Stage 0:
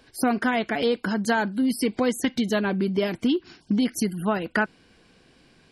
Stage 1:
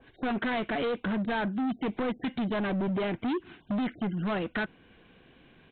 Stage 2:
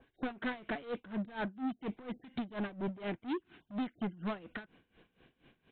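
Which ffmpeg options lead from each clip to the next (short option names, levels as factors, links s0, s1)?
-af "aresample=8000,volume=22.4,asoftclip=hard,volume=0.0447,aresample=44100,adynamicequalizer=threshold=0.00501:dfrequency=2200:dqfactor=0.7:tfrequency=2200:tqfactor=0.7:attack=5:release=100:ratio=0.375:range=2:mode=cutabove:tftype=highshelf"
-af "aeval=exprs='val(0)*pow(10,-19*(0.5-0.5*cos(2*PI*4.2*n/s))/20)':c=same,volume=0.631"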